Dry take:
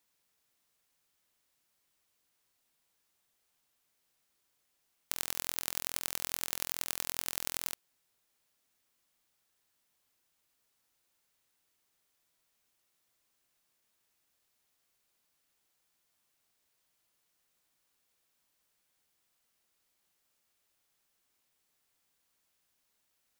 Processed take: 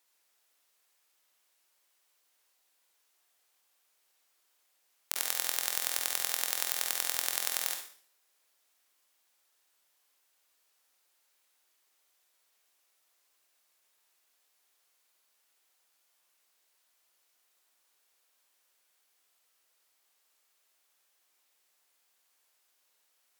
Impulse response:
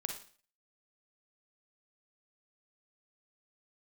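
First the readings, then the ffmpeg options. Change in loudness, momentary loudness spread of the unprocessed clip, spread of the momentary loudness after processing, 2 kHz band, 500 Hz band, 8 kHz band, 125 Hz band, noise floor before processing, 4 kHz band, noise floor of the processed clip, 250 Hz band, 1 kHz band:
+4.5 dB, 4 LU, 5 LU, +5.5 dB, +2.5 dB, +5.0 dB, under -15 dB, -78 dBFS, +5.0 dB, -74 dBFS, -6.5 dB, +4.0 dB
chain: -filter_complex "[0:a]highpass=450[a];[1:a]atrim=start_sample=2205,asetrate=39690,aresample=44100[b];[a][b]afir=irnorm=-1:irlink=0,volume=4dB"

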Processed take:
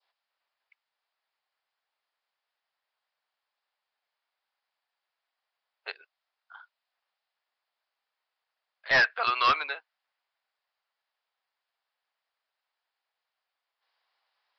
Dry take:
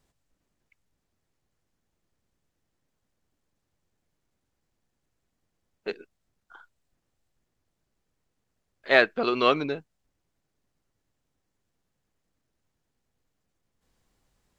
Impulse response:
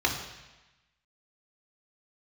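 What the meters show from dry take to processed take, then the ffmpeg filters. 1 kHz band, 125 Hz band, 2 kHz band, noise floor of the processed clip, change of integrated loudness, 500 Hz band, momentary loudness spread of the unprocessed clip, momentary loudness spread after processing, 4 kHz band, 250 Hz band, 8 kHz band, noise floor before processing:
+1.5 dB, -8.0 dB, +0.5 dB, under -85 dBFS, -1.5 dB, -12.0 dB, 17 LU, 19 LU, 0.0 dB, -18.0 dB, n/a, -80 dBFS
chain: -af "highpass=f=740:w=0.5412,highpass=f=740:w=1.3066,adynamicequalizer=threshold=0.02:dfrequency=1700:dqfactor=1:tfrequency=1700:tqfactor=1:attack=5:release=100:ratio=0.375:range=3.5:mode=boostabove:tftype=bell,aresample=11025,asoftclip=type=hard:threshold=-19.5dB,aresample=44100,volume=1.5dB"

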